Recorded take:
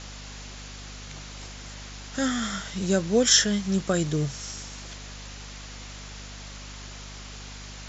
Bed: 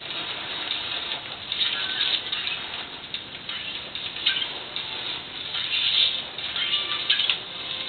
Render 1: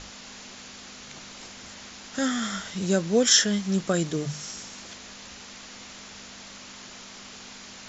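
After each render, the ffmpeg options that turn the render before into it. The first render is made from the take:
-af "bandreject=f=50:t=h:w=6,bandreject=f=100:t=h:w=6,bandreject=f=150:t=h:w=6"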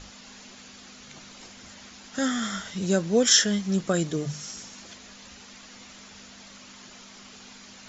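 -af "afftdn=nr=6:nf=-44"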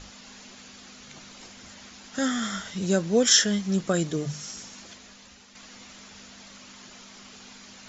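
-filter_complex "[0:a]asplit=2[a][b];[a]atrim=end=5.55,asetpts=PTS-STARTPTS,afade=t=out:st=4.78:d=0.77:silence=0.446684[c];[b]atrim=start=5.55,asetpts=PTS-STARTPTS,afade=t=in:d=0.004:c=hsin:silence=0.446684[d];[c][d]concat=n=2:v=0:a=1"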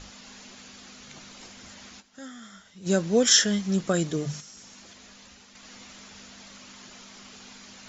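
-filter_complex "[0:a]asettb=1/sr,asplit=3[a][b][c];[a]atrim=end=4.404[d];[b]atrim=start=4.4:end=5.65,asetpts=PTS-STARTPTS,afade=t=in:d=0.004:c=qsin,afade=t=out:st=1.246:d=0.004:c=qsin,acompressor=threshold=-45dB:ratio=4:attack=3.2:release=140:knee=1:detection=peak[e];[c]atrim=start=5.646[f];[d][e]acrossfade=d=0.004:c1=hsin:c2=qsin[g];[g][f]acrossfade=d=0.004:c1=qsin:c2=hsin,asplit=3[h][i][j];[h]atrim=end=2.12,asetpts=PTS-STARTPTS,afade=t=out:st=2:d=0.12:c=exp:silence=0.158489[k];[i]atrim=start=2.12:end=2.75,asetpts=PTS-STARTPTS,volume=-16dB[l];[j]atrim=start=2.75,asetpts=PTS-STARTPTS,afade=t=in:d=0.12:c=exp:silence=0.158489[m];[k][l][m]concat=n=3:v=0:a=1"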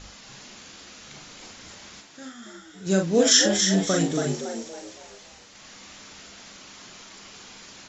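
-filter_complex "[0:a]asplit=2[a][b];[b]adelay=42,volume=-4.5dB[c];[a][c]amix=inputs=2:normalize=0,asplit=6[d][e][f][g][h][i];[e]adelay=279,afreqshift=85,volume=-6dB[j];[f]adelay=558,afreqshift=170,volume=-14.4dB[k];[g]adelay=837,afreqshift=255,volume=-22.8dB[l];[h]adelay=1116,afreqshift=340,volume=-31.2dB[m];[i]adelay=1395,afreqshift=425,volume=-39.6dB[n];[d][j][k][l][m][n]amix=inputs=6:normalize=0"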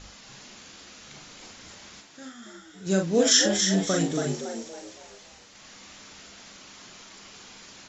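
-af "volume=-2dB"

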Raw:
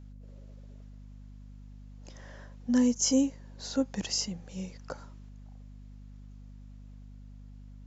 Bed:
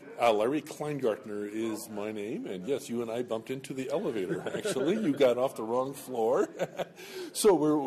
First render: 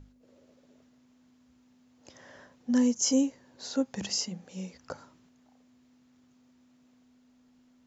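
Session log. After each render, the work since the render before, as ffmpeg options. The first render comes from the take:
-af "bandreject=f=50:t=h:w=6,bandreject=f=100:t=h:w=6,bandreject=f=150:t=h:w=6,bandreject=f=200:t=h:w=6"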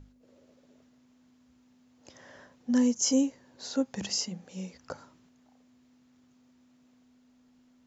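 -af anull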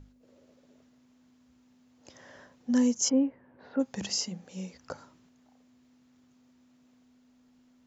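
-filter_complex "[0:a]asplit=3[a][b][c];[a]afade=t=out:st=3.08:d=0.02[d];[b]lowpass=f=2.1k:w=0.5412,lowpass=f=2.1k:w=1.3066,afade=t=in:st=3.08:d=0.02,afade=t=out:st=3.79:d=0.02[e];[c]afade=t=in:st=3.79:d=0.02[f];[d][e][f]amix=inputs=3:normalize=0"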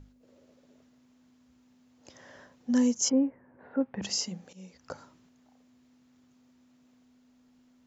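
-filter_complex "[0:a]asettb=1/sr,asplit=3[a][b][c];[a]atrim=end=3.124[d];[b]atrim=start=3.12:end=4.02,asetpts=PTS-STARTPTS,afade=t=in:d=0.004:c=qsin,afade=t=out:st=0.896:d=0.004:c=qsin,lowpass=f=2.3k:w=0.5412,lowpass=f=2.3k:w=1.3066[e];[c]atrim=start=4.016[f];[d][e]acrossfade=d=0.004:c1=hsin:c2=qsin[g];[g][f]acrossfade=d=0.004:c1=qsin:c2=hsin,asplit=2[h][i];[h]atrim=end=4.53,asetpts=PTS-STARTPTS,afade=t=out:st=4.526:d=0.004:c=hsin:silence=0.177828[j];[i]atrim=start=4.53,asetpts=PTS-STARTPTS,afade=t=in:d=0.44:silence=0.177828[k];[j][k]concat=n=2:v=0:a=1"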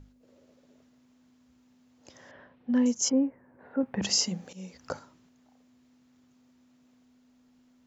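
-filter_complex "[0:a]asettb=1/sr,asplit=3[a][b][c];[a]atrim=end=2.314[d];[b]atrim=start=2.31:end=2.86,asetpts=PTS-STARTPTS,afade=t=in:d=0.004:c=qsin,afade=t=out:st=0.546:d=0.004:c=qsin,lowpass=f=3.2k:w=0.5412,lowpass=f=3.2k:w=1.3066[e];[c]atrim=start=2.856[f];[d][e]acrossfade=d=0.004:c1=hsin:c2=qsin[g];[g][f]acrossfade=d=0.004:c1=qsin:c2=hsin,asettb=1/sr,asplit=3[h][i][j];[h]atrim=end=3.834[k];[i]atrim=start=3.83:end=4.99,asetpts=PTS-STARTPTS,afade=t=in:d=0.004:c=qsin,afade=t=out:st=1.156:d=0.004:c=qsin,acontrast=36[l];[j]atrim=start=4.986[m];[k][l]acrossfade=d=0.004:c1=hsin:c2=qsin[n];[n][m]acrossfade=d=0.004:c1=qsin:c2=hsin"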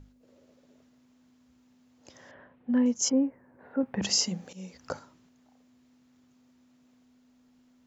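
-filter_complex "[0:a]asettb=1/sr,asplit=3[a][b][c];[a]atrim=end=2.344[d];[b]atrim=start=2.34:end=2.95,asetpts=PTS-STARTPTS,afade=t=in:d=0.004:c=qsin,afade=t=out:st=0.606:d=0.004:c=qsin,lowpass=2.7k[e];[c]atrim=start=2.946[f];[d][e]acrossfade=d=0.004:c1=hsin:c2=qsin[g];[g][f]acrossfade=d=0.004:c1=qsin:c2=hsin"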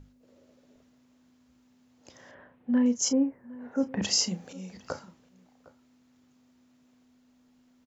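-filter_complex "[0:a]asplit=2[a][b];[b]adelay=33,volume=-12dB[c];[a][c]amix=inputs=2:normalize=0,asplit=2[d][e];[e]adelay=758,volume=-20dB,highshelf=f=4k:g=-17.1[f];[d][f]amix=inputs=2:normalize=0"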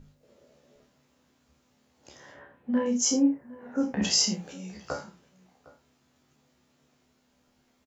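-filter_complex "[0:a]asplit=2[a][b];[b]adelay=28,volume=-5dB[c];[a][c]amix=inputs=2:normalize=0,aecho=1:1:14|54|75:0.531|0.299|0.15"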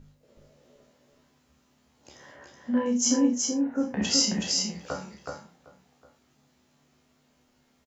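-filter_complex "[0:a]asplit=2[a][b];[b]adelay=41,volume=-13dB[c];[a][c]amix=inputs=2:normalize=0,aecho=1:1:373:0.668"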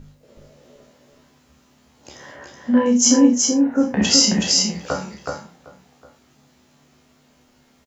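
-af "volume=9.5dB,alimiter=limit=-3dB:level=0:latency=1"

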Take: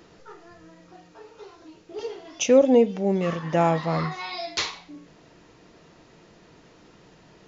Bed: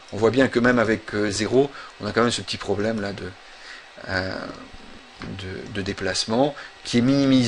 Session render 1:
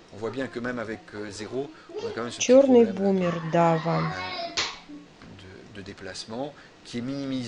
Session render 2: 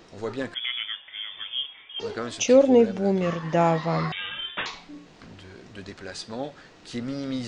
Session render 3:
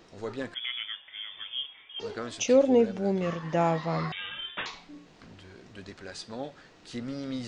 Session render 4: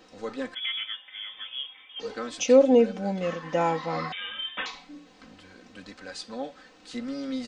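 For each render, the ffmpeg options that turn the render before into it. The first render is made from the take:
-filter_complex "[1:a]volume=-13dB[a];[0:a][a]amix=inputs=2:normalize=0"
-filter_complex "[0:a]asettb=1/sr,asplit=3[a][b][c];[a]atrim=end=0.544[d];[b]atrim=start=0.54:end=2,asetpts=PTS-STARTPTS,afade=t=in:d=0.004:c=qsin,afade=t=out:st=1.456:d=0.004:c=qsin,lowpass=f=3.1k:t=q:w=0.5098,lowpass=f=3.1k:t=q:w=0.6013,lowpass=f=3.1k:t=q:w=0.9,lowpass=f=3.1k:t=q:w=2.563,afreqshift=-3600[e];[c]atrim=start=1.996[f];[d][e]acrossfade=d=0.004:c1=hsin:c2=qsin[g];[g][f]acrossfade=d=0.004:c1=qsin:c2=hsin,asettb=1/sr,asplit=3[h][i][j];[h]atrim=end=4.124[k];[i]atrim=start=4.12:end=4.66,asetpts=PTS-STARTPTS,afade=t=in:d=0.004:c=qsin,afade=t=out:st=0.536:d=0.004:c=qsin,lowpass=f=3.2k:t=q:w=0.5098,lowpass=f=3.2k:t=q:w=0.6013,lowpass=f=3.2k:t=q:w=0.9,lowpass=f=3.2k:t=q:w=2.563,afreqshift=-3800[l];[j]atrim=start=4.656[m];[k][l]acrossfade=d=0.004:c1=hsin:c2=qsin[n];[n][m]acrossfade=d=0.004:c1=qsin:c2=hsin"
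-af "volume=-4.5dB"
-af "lowshelf=f=160:g=-7,aecho=1:1:3.9:0.78"

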